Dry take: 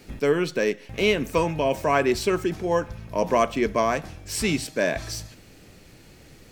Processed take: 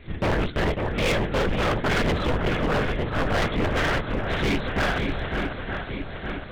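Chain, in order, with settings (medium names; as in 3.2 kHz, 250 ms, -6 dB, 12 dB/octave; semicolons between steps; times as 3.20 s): comb filter that takes the minimum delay 0.55 ms; LPC vocoder at 8 kHz whisper; shuffle delay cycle 913 ms, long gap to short 1.5:1, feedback 54%, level -10 dB; hard clipper -26 dBFS, distortion -7 dB; trim +6 dB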